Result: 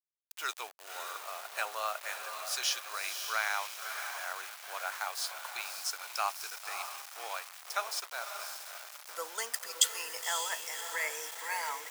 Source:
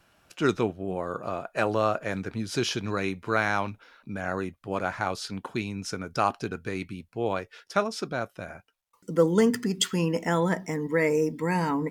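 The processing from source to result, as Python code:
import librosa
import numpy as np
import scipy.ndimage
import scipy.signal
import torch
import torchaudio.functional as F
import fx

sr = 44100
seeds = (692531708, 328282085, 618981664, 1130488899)

y = fx.high_shelf(x, sr, hz=2300.0, db=7.0)
y = fx.echo_diffused(y, sr, ms=561, feedback_pct=48, wet_db=-6.5)
y = np.where(np.abs(y) >= 10.0 ** (-33.5 / 20.0), y, 0.0)
y = scipy.signal.sosfilt(scipy.signal.butter(4, 740.0, 'highpass', fs=sr, output='sos'), y)
y = fx.high_shelf(y, sr, hz=7800.0, db=10.0)
y = F.gain(torch.from_numpy(y), -8.0).numpy()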